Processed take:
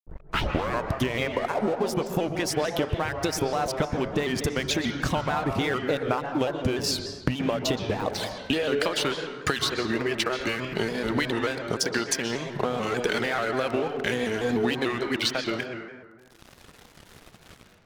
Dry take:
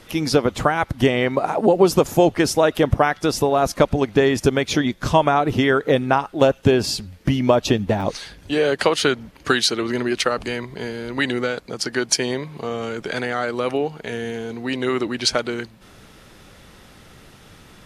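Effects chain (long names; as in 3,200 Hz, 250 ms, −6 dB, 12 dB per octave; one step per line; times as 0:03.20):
turntable start at the beginning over 1.01 s
noise gate −40 dBFS, range −8 dB
reverb reduction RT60 1.2 s
dynamic equaliser 2,800 Hz, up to +4 dB, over −35 dBFS, Q 1
automatic gain control gain up to 7 dB
in parallel at +2.5 dB: brickwall limiter −11.5 dBFS, peak gain reduction 10 dB
on the sum: downward compressor 16 to 1, threshold −24 dBFS, peak gain reduction 20.5 dB
dead-zone distortion −40.5 dBFS
on a send at −5 dB: convolution reverb RT60 1.5 s, pre-delay 117 ms
on the sum: pitch modulation by a square or saw wave square 3.4 Hz, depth 100 cents
level +2 dB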